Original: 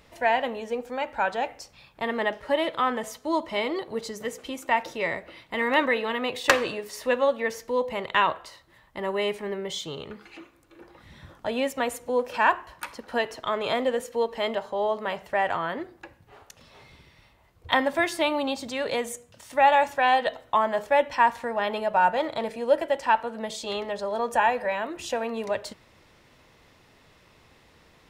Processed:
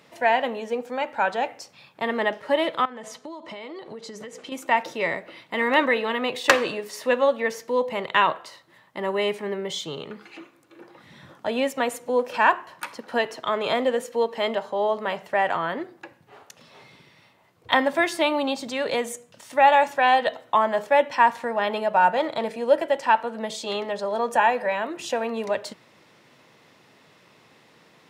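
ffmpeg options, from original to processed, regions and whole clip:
-filter_complex "[0:a]asettb=1/sr,asplit=3[a][b][c];[a]atrim=end=2.854[d];[b]atrim=start=2.85:end=4.52,asetpts=PTS-STARTPTS,afade=t=in:d=0.004:c=qsin,afade=t=out:st=1.666:d=0.004:c=qsin,lowpass=8.3k,acompressor=threshold=-36dB:ratio=20:attack=3.2:release=140:knee=1:detection=peak[e];[c]atrim=start=4.516[f];[d][e]acrossfade=d=0.004:c1=hsin:c2=qsin[g];[g][f]acrossfade=d=0.004:c1=qsin:c2=hsin,highpass=f=130:w=0.5412,highpass=f=130:w=1.3066,highshelf=f=10k:g=-3.5,volume=2.5dB"

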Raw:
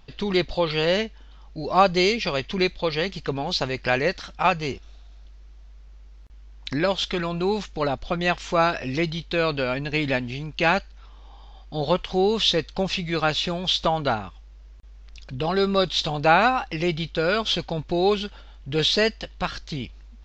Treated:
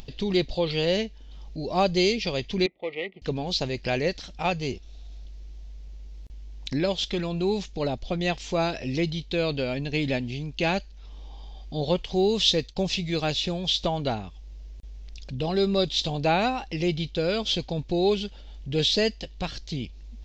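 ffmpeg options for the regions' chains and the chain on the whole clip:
-filter_complex "[0:a]asettb=1/sr,asplit=3[a][b][c];[a]atrim=end=2.664[d];[b]atrim=start=2.66:end=3.22,asetpts=PTS-STARTPTS,afade=t=in:d=0.004:c=qsin,afade=t=out:st=0.556:d=0.004:c=qsin,adynamicsmooth=sensitivity=2.5:basefreq=800,asuperstop=centerf=1600:order=12:qfactor=2.7,highpass=420,equalizer=f=560:t=q:w=4:g=-4,equalizer=f=1k:t=q:w=4:g=-9,equalizer=f=1.9k:t=q:w=4:g=10,lowpass=f=2.9k:w=0.5412,lowpass=f=2.9k:w=1.3066[e];[c]atrim=start=3.216[f];[d][e]acrossfade=d=0.004:c1=hsin:c2=qsin[g];[g][f]acrossfade=d=0.004:c1=qsin:c2=hsin,asettb=1/sr,asplit=3[h][i][j];[h]atrim=end=12.164[k];[i]atrim=start=12.16:end=13.33,asetpts=PTS-STARTPTS,afade=t=in:d=0.004:c=qsin,afade=t=out:st=1.166:d=0.004:c=qsin,agate=range=-33dB:threshold=-38dB:ratio=3:release=100:detection=peak,highshelf=f=6.1k:g=6[l];[j]atrim=start=13.326[m];[k][l]acrossfade=d=0.004:c1=hsin:c2=qsin[n];[n][m]acrossfade=d=0.004:c1=qsin:c2=hsin,equalizer=f=1.3k:t=o:w=1.3:g=-13.5,acompressor=mode=upward:threshold=-34dB:ratio=2.5"

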